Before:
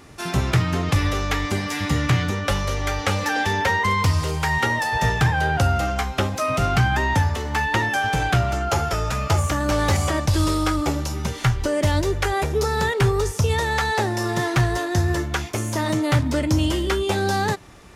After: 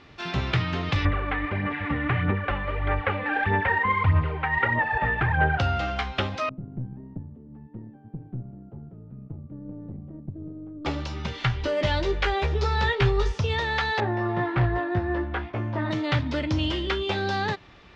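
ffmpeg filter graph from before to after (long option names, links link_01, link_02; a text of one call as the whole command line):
ffmpeg -i in.wav -filter_complex "[0:a]asettb=1/sr,asplit=3[link_01][link_02][link_03];[link_01]atrim=end=1.054[link_04];[link_02]atrim=start=1.05:end=5.59,asetpts=PTS-STARTPTS,afade=type=in:duration=0.004:curve=qsin,afade=type=out:start_time=4.536:duration=0.004:curve=qsin,lowpass=frequency=2200:width=0.5412,lowpass=frequency=2200:width=1.3066,aphaser=in_gain=1:out_gain=1:delay=4:decay=0.54:speed=1.6:type=sinusoidal[link_05];[link_03]atrim=start=5.586[link_06];[link_04][link_05]acrossfade=duration=0.004:curve1=hsin:curve2=qsin[link_07];[link_07][link_06]acrossfade=duration=0.004:curve1=qsin:curve2=hsin,asettb=1/sr,asplit=3[link_08][link_09][link_10];[link_08]atrim=end=6.494[link_11];[link_09]atrim=start=6.49:end=10.85,asetpts=PTS-STARTPTS,afade=type=in:duration=0.004:curve=qsin,afade=type=out:start_time=4.356:duration=0.004:curve=qsin,asuperpass=centerf=190:order=4:qfactor=1.3,aeval=exprs='(tanh(8.91*val(0)+0.6)-tanh(0.6))/8.91':channel_layout=same[link_12];[link_10]atrim=start=10.846[link_13];[link_11][link_12]acrossfade=duration=0.004:curve1=hsin:curve2=qsin[link_14];[link_14][link_13]acrossfade=duration=0.004:curve1=qsin:curve2=hsin,asettb=1/sr,asplit=3[link_15][link_16][link_17];[link_15]atrim=end=11.524[link_18];[link_16]atrim=start=11.52:end=13.38,asetpts=PTS-STARTPTS,afade=type=in:duration=0.004:curve=qsin,afade=type=out:start_time=1.856:duration=0.004:curve=qsin,asubboost=boost=6.5:cutoff=77,asplit=2[link_19][link_20];[link_20]adelay=15,volume=-4dB[link_21];[link_19][link_21]amix=inputs=2:normalize=0,atrim=end_sample=82026[link_22];[link_17]atrim=start=13.376[link_23];[link_18][link_22]acrossfade=duration=0.004:curve1=hsin:curve2=qsin[link_24];[link_24][link_23]acrossfade=duration=0.004:curve1=qsin:curve2=hsin,asettb=1/sr,asplit=3[link_25][link_26][link_27];[link_25]atrim=end=14.004[link_28];[link_26]atrim=start=14:end=15.91,asetpts=PTS-STARTPTS,afade=type=in:duration=0.004:curve=qsin,afade=type=out:start_time=1.906:duration=0.004:curve=qsin,lowpass=1500,asplit=2[link_29][link_30];[link_30]adelay=17,volume=-3dB[link_31];[link_29][link_31]amix=inputs=2:normalize=0,atrim=end_sample=84231,volume=11dB,asoftclip=hard,volume=-11dB[link_32];[link_27]atrim=start=15.906[link_33];[link_28][link_32]acrossfade=duration=0.004:curve1=hsin:curve2=qsin[link_34];[link_34][link_33]acrossfade=duration=0.004:curve1=qsin:curve2=hsin,lowpass=frequency=3800:width=0.5412,lowpass=frequency=3800:width=1.3066,highshelf=frequency=2400:gain=10.5,volume=-6dB" out.wav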